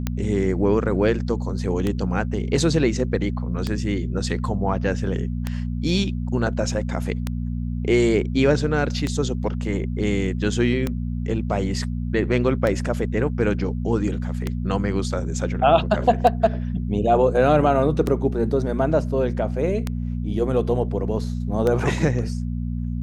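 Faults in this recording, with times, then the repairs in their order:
mains hum 60 Hz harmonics 4 −26 dBFS
scratch tick 33 1/3 rpm −10 dBFS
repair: click removal
hum removal 60 Hz, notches 4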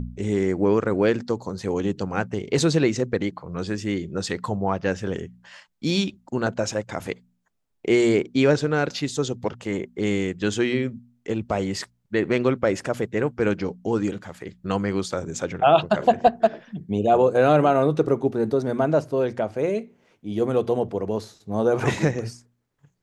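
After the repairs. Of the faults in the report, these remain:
none of them is left

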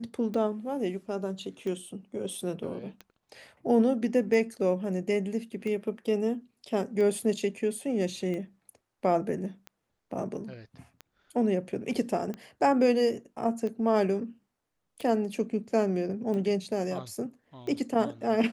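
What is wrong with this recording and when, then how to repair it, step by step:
scratch tick 45 rpm −25 dBFS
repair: click removal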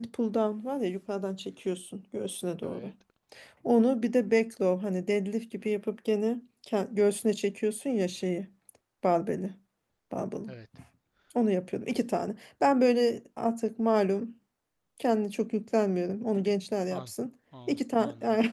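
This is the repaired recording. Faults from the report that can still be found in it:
none of them is left

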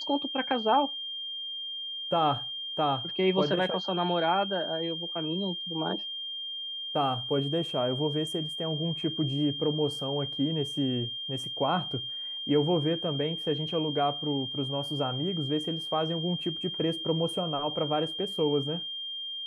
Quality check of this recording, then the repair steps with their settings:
whistle 3,200 Hz −34 dBFS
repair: notch filter 3,200 Hz, Q 30

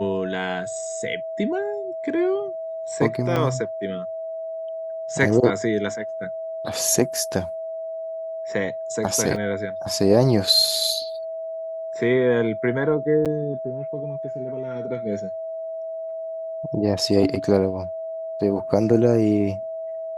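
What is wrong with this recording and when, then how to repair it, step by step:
whistle 650 Hz −28 dBFS
0:03.36: drop-out 3.9 ms
0:09.36: drop-out 2.2 ms
0:13.25–0:13.26: drop-out 7.2 ms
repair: notch filter 650 Hz, Q 30
repair the gap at 0:03.36, 3.9 ms
repair the gap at 0:09.36, 2.2 ms
repair the gap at 0:13.25, 7.2 ms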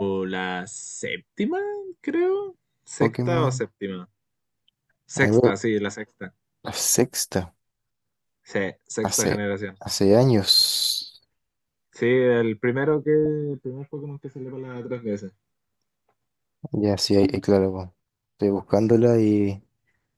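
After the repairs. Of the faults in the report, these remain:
none of them is left

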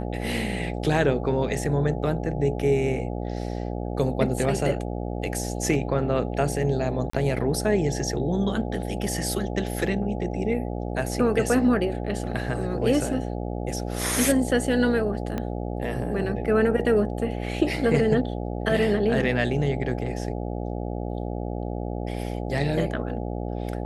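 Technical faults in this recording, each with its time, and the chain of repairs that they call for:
mains buzz 60 Hz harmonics 14 −30 dBFS
0:07.10–0:07.13: drop-out 34 ms
0:15.38: click −16 dBFS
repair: click removal
hum removal 60 Hz, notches 14
repair the gap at 0:07.10, 34 ms

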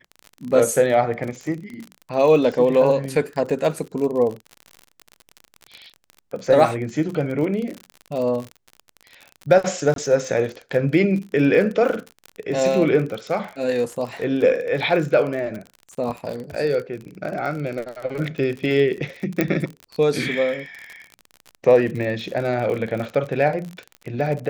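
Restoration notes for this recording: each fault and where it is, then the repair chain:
surface crackle 44 per second −28 dBFS
0:09.94–0:09.96: drop-out 22 ms
0:19.41: click −6 dBFS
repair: click removal
repair the gap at 0:09.94, 22 ms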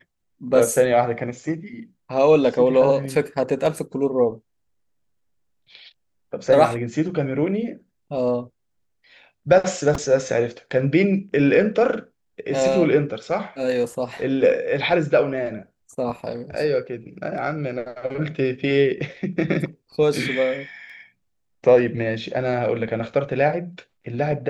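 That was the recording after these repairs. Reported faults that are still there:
none of them is left

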